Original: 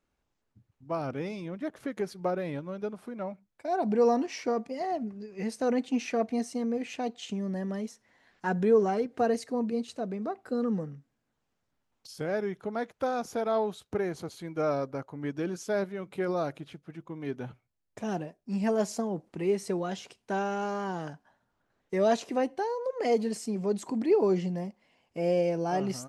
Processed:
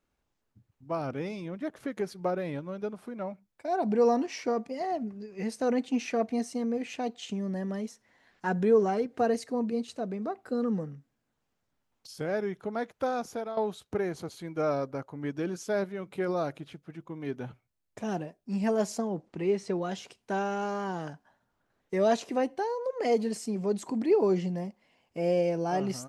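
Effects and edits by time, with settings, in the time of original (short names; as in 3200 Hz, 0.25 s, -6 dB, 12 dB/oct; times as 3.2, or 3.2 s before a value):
13.07–13.57 fade out equal-power, to -13 dB
18.97–19.8 LPF 9300 Hz -> 4800 Hz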